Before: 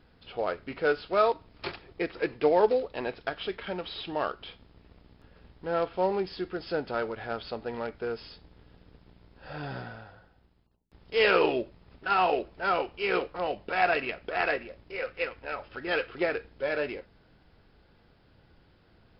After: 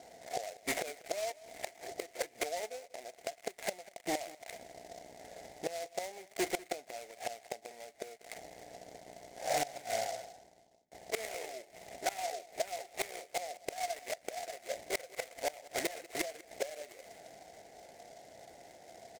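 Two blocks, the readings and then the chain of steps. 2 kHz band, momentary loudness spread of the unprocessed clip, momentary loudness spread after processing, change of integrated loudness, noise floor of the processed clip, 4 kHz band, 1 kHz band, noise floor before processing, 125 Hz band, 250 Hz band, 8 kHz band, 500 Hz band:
-11.0 dB, 15 LU, 17 LU, -10.0 dB, -62 dBFS, -5.5 dB, -9.5 dB, -62 dBFS, -14.5 dB, -11.0 dB, n/a, -11.0 dB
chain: switching dead time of 0.26 ms; low-pass opened by the level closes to 1400 Hz, open at -26 dBFS; in parallel at +2 dB: compressor 5:1, threshold -37 dBFS, peak gain reduction 17.5 dB; on the sum: double band-pass 1200 Hz, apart 1.6 oct; flipped gate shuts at -34 dBFS, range -24 dB; soft clip -39.5 dBFS, distortion -15 dB; on a send: echo 0.193 s -19.5 dB; on the sum: noise-modulated delay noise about 5200 Hz, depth 0.065 ms; gain +16 dB

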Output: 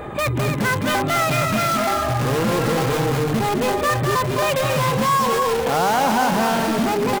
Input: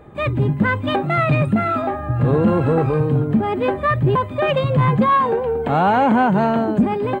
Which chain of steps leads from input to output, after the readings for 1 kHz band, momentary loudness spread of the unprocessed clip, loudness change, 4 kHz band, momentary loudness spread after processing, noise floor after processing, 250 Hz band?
-0.5 dB, 5 LU, -1.5 dB, +8.0 dB, 3 LU, -23 dBFS, -4.5 dB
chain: low shelf 410 Hz -8 dB; de-hum 48.75 Hz, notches 10; in parallel at -4.5 dB: wrapped overs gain 20 dB; on the sum: vibrato 11 Hz 6.1 cents; on a send: loudspeakers at several distances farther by 72 m -7 dB, 93 m -8 dB; on the sum: fast leveller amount 50%; gain -3 dB

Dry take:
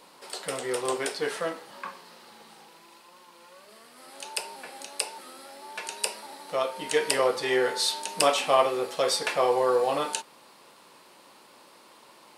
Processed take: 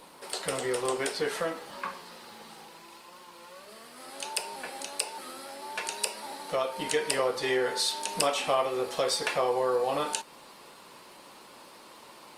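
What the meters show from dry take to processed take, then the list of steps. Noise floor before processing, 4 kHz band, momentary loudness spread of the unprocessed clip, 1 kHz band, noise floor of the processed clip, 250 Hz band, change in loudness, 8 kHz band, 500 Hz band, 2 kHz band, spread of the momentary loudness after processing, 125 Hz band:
-55 dBFS, -2.0 dB, 18 LU, -3.0 dB, -52 dBFS, -1.5 dB, -3.0 dB, -1.0 dB, -3.0 dB, -2.0 dB, 22 LU, +1.0 dB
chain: low shelf 72 Hz +11.5 dB; compressor 2:1, threshold -32 dBFS, peak gain reduction 9.5 dB; gain +3 dB; Opus 32 kbps 48000 Hz

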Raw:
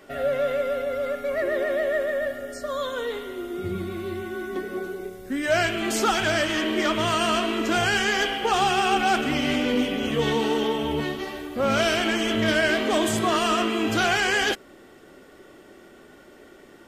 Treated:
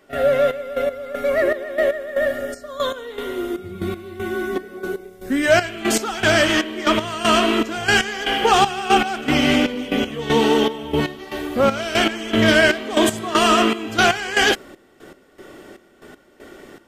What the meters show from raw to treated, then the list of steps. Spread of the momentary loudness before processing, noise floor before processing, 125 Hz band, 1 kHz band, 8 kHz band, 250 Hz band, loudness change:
10 LU, -50 dBFS, +4.0 dB, +4.5 dB, +4.5 dB, +5.0 dB, +5.0 dB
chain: step gate ".xxx..x." 118 bpm -12 dB; gain +7.5 dB

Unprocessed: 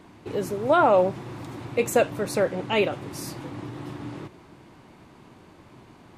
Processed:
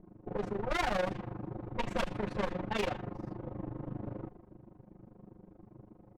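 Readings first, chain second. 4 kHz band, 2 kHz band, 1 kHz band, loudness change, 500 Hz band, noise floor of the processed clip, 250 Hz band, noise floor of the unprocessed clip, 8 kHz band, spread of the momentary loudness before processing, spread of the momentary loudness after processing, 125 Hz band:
-7.0 dB, -7.5 dB, -11.5 dB, -12.0 dB, -14.0 dB, -58 dBFS, -8.0 dB, -52 dBFS, -16.0 dB, 18 LU, 23 LU, -5.0 dB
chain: minimum comb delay 9.5 ms; low-pass opened by the level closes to 480 Hz, open at -18 dBFS; low shelf 150 Hz +5.5 dB; comb 5.6 ms, depth 48%; one-sided clip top -24.5 dBFS; AM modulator 25 Hz, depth 80%; soft clip -26.5 dBFS, distortion -9 dB

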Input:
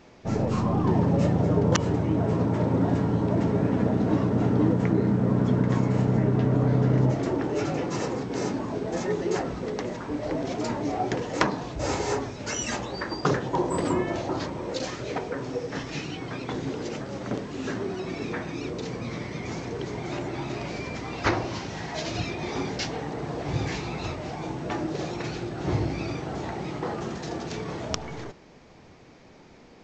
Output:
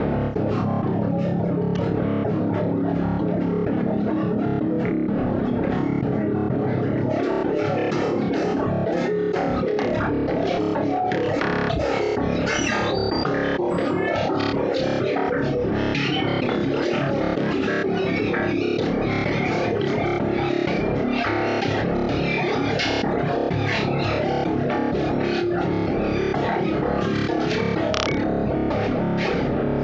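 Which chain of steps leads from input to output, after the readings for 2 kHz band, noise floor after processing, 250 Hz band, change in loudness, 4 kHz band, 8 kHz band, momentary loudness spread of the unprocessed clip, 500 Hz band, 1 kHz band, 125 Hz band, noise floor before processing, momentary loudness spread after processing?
+8.5 dB, -24 dBFS, +5.0 dB, +5.0 dB, +6.5 dB, -3.0 dB, 11 LU, +7.0 dB, +6.0 dB, +1.0 dB, -51 dBFS, 1 LU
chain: opening faded in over 1.80 s; wind noise 390 Hz -33 dBFS; air absorption 320 m; step gate "xx.xxx.xxxxx" 127 bpm -24 dB; reverb removal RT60 0.92 s; HPF 160 Hz 6 dB/oct; high shelf 4400 Hz +8 dB; notch 1000 Hz, Q 5.2; reverb removal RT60 0.65 s; on a send: flutter echo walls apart 4.9 m, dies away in 0.47 s; on the sum: fast leveller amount 100%; gain -2 dB

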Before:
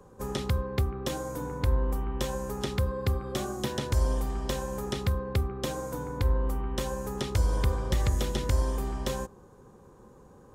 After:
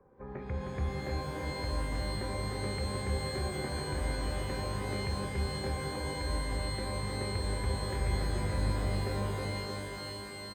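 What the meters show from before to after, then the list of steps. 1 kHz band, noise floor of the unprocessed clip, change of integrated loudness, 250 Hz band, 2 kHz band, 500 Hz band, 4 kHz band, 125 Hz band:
-2.0 dB, -54 dBFS, -4.0 dB, -3.5 dB, +1.5 dB, -4.0 dB, 0.0 dB, -4.0 dB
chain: rippled Chebyshev low-pass 2400 Hz, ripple 3 dB; feedback echo 0.312 s, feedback 55%, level -4 dB; shimmer reverb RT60 3.3 s, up +12 st, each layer -2 dB, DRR 3 dB; gain -8.5 dB

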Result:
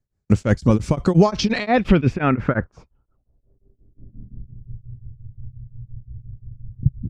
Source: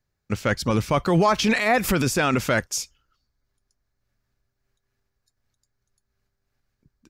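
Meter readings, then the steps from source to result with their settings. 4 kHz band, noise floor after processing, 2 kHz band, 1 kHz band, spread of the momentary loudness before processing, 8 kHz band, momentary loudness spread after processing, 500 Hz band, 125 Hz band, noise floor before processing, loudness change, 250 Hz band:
-2.5 dB, -73 dBFS, -3.5 dB, -1.0 dB, 10 LU, -10.0 dB, 20 LU, +2.0 dB, +7.5 dB, -79 dBFS, +2.5 dB, +5.5 dB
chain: recorder AGC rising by 19 dB/s; low-pass sweep 8000 Hz -> 120 Hz, 1.03–4.82; tilt shelf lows +8 dB, about 680 Hz; gate -44 dBFS, range -7 dB; beating tremolo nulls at 5.7 Hz; gain +3 dB

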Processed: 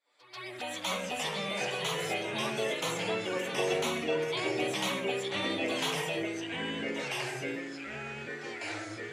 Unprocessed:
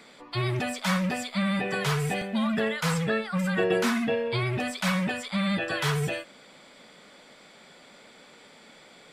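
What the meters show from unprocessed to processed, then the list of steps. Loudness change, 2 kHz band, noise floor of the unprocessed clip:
-5.5 dB, -3.5 dB, -53 dBFS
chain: opening faded in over 0.84 s; HPF 530 Hz 12 dB/oct; envelope flanger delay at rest 7.1 ms, full sweep at -34.5 dBFS; reverse echo 0.139 s -16 dB; echoes that change speed 0.189 s, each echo -3 st, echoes 3

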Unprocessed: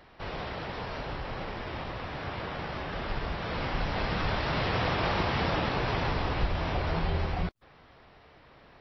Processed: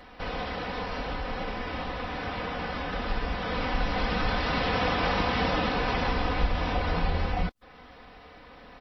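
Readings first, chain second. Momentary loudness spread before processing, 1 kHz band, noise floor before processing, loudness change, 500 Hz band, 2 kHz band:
9 LU, +3.0 dB, -56 dBFS, +2.5 dB, +2.0 dB, +3.0 dB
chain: comb 4 ms; in parallel at -2 dB: compressor, threshold -42 dBFS, peak gain reduction 20.5 dB

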